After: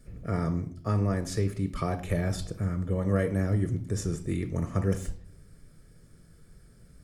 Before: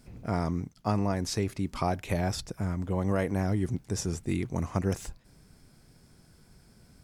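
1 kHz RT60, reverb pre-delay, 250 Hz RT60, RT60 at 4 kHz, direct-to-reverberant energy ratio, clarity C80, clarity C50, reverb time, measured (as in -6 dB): 0.45 s, 3 ms, 0.90 s, 0.40 s, 8.5 dB, 17.5 dB, 13.5 dB, 0.55 s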